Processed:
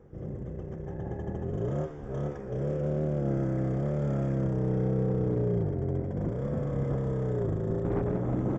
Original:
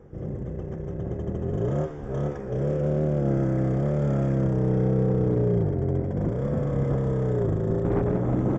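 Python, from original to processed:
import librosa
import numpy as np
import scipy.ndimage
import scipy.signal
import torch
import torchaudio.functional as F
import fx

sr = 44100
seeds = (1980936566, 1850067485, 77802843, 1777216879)

y = fx.small_body(x, sr, hz=(830.0, 1700.0), ring_ms=45, db=fx.line((0.85, 16.0), (1.43, 13.0)), at=(0.85, 1.43), fade=0.02)
y = y * 10.0 ** (-5.0 / 20.0)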